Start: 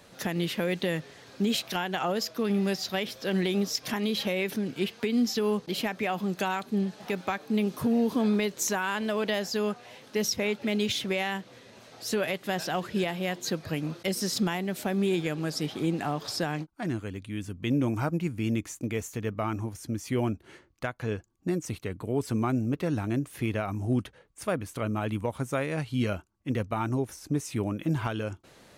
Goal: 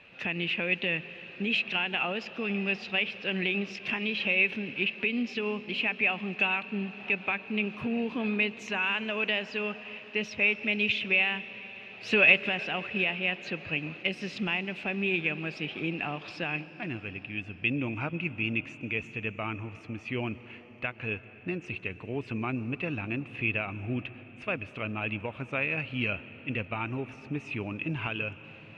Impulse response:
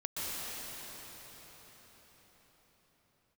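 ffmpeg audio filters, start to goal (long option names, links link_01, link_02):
-filter_complex "[0:a]asettb=1/sr,asplit=3[link_01][link_02][link_03];[link_01]atrim=end=12.034[link_04];[link_02]atrim=start=12.03:end=12.49,asetpts=PTS-STARTPTS,afade=type=in:duration=0.004:curve=qsin,afade=type=out:start_time=0.456:duration=0.004:curve=qsin,acontrast=73[link_05];[link_03]atrim=start=12.486[link_06];[link_04][link_05]acrossfade=duration=0.004:curve1=hsin:curve2=qsin[link_07];[link_07][link_06]acrossfade=duration=0.004:curve1=qsin:curve2=hsin,lowpass=frequency=2600:width_type=q:width=12,asplit=2[link_08][link_09];[1:a]atrim=start_sample=2205[link_10];[link_09][link_10]afir=irnorm=-1:irlink=0,volume=-19.5dB[link_11];[link_08][link_11]amix=inputs=2:normalize=0,volume=-6.5dB"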